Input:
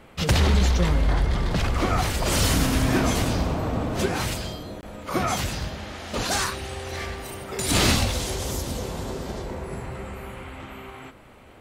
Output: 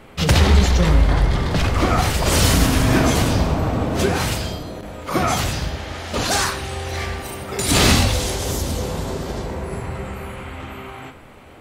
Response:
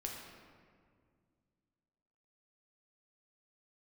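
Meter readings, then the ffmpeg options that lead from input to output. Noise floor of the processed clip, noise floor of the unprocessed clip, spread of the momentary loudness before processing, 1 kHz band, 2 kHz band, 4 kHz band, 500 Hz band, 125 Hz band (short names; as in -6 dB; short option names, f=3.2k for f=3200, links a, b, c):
-42 dBFS, -48 dBFS, 16 LU, +5.5 dB, +5.5 dB, +5.0 dB, +5.5 dB, +6.0 dB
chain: -filter_complex "[0:a]asplit=2[a][b];[1:a]atrim=start_sample=2205,atrim=end_sample=6174[c];[b][c]afir=irnorm=-1:irlink=0,volume=1.5dB[d];[a][d]amix=inputs=2:normalize=0"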